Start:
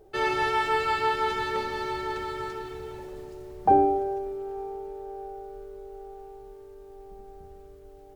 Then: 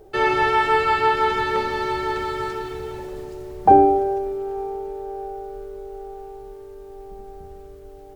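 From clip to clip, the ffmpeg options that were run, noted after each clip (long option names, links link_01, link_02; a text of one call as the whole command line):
ffmpeg -i in.wav -filter_complex "[0:a]acrossover=split=3200[link_01][link_02];[link_02]acompressor=threshold=-47dB:ratio=4:attack=1:release=60[link_03];[link_01][link_03]amix=inputs=2:normalize=0,volume=7dB" out.wav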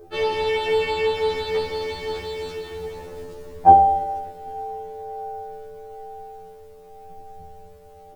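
ffmpeg -i in.wav -af "afftfilt=real='re*2*eq(mod(b,4),0)':imag='im*2*eq(mod(b,4),0)':win_size=2048:overlap=0.75,volume=2dB" out.wav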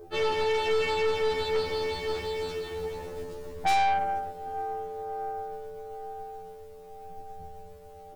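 ffmpeg -i in.wav -af "aeval=exprs='(tanh(12.6*val(0)+0.4)-tanh(0.4))/12.6':channel_layout=same" out.wav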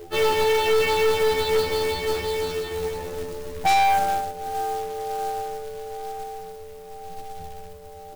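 ffmpeg -i in.wav -af "acrusher=bits=3:mode=log:mix=0:aa=0.000001,volume=6dB" out.wav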